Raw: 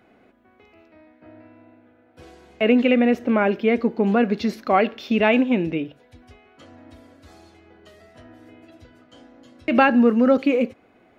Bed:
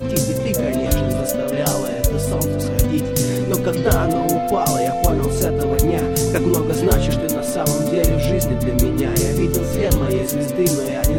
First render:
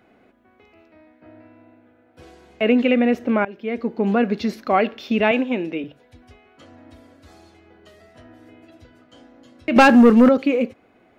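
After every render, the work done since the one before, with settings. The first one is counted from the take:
0:03.45–0:04.08: fade in, from −21 dB
0:05.31–0:05.84: high-pass filter 270 Hz
0:09.76–0:10.29: leveller curve on the samples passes 2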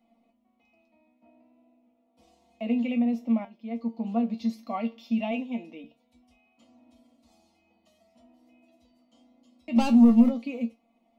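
phaser with its sweep stopped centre 420 Hz, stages 6
tuned comb filter 230 Hz, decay 0.19 s, harmonics all, mix 90%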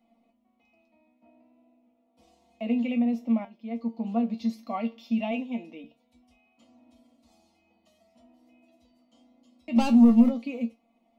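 no processing that can be heard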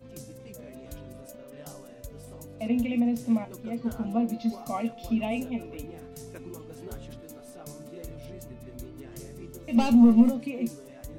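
mix in bed −25 dB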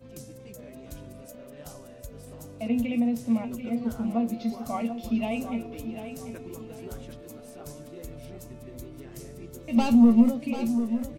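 repeating echo 741 ms, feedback 31%, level −10 dB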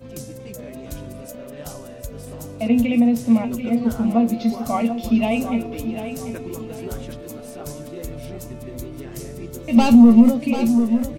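level +9 dB
brickwall limiter −3 dBFS, peak gain reduction 3 dB

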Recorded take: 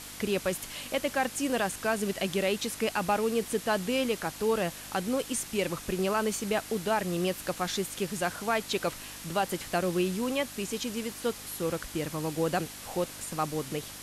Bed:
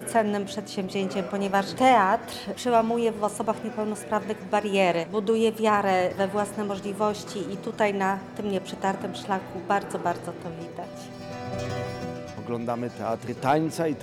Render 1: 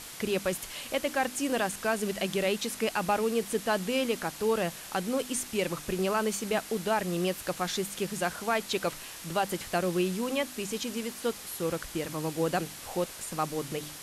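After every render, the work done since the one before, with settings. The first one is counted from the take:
hum removal 50 Hz, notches 6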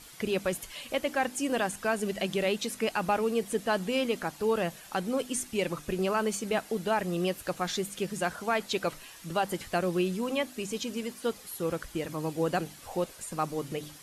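broadband denoise 9 dB, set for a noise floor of −44 dBFS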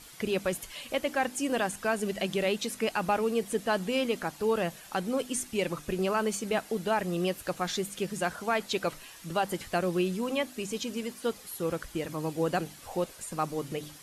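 no processing that can be heard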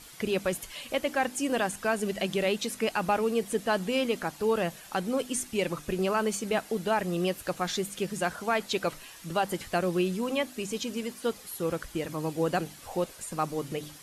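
level +1 dB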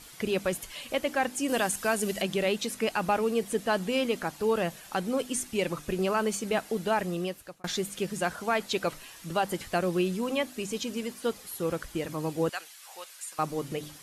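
0:01.48–0:02.22: high-shelf EQ 4,700 Hz +9 dB
0:07.01–0:07.64: fade out
0:12.49–0:13.39: high-pass filter 1,400 Hz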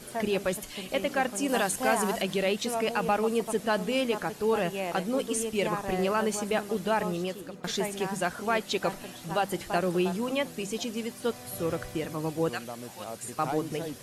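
mix in bed −11.5 dB

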